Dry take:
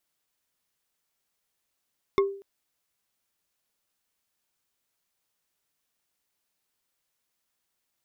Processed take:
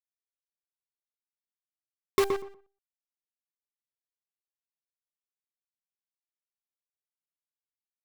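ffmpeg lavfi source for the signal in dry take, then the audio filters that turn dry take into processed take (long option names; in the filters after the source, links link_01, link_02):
-f lavfi -i "aevalsrc='0.158*pow(10,-3*t/0.47)*sin(2*PI*395*t)+0.0891*pow(10,-3*t/0.139)*sin(2*PI*1089*t)+0.0501*pow(10,-3*t/0.062)*sin(2*PI*2134.6*t)+0.0282*pow(10,-3*t/0.034)*sin(2*PI*3528.5*t)+0.0158*pow(10,-3*t/0.021)*sin(2*PI*5269.3*t)':duration=0.24:sample_rate=44100"
-filter_complex "[0:a]acrusher=bits=5:dc=4:mix=0:aa=0.000001,asplit=2[link_01][link_02];[link_02]adelay=122,lowpass=frequency=1800:poles=1,volume=-5dB,asplit=2[link_03][link_04];[link_04]adelay=122,lowpass=frequency=1800:poles=1,volume=0.16,asplit=2[link_05][link_06];[link_06]adelay=122,lowpass=frequency=1800:poles=1,volume=0.16[link_07];[link_03][link_05][link_07]amix=inputs=3:normalize=0[link_08];[link_01][link_08]amix=inputs=2:normalize=0"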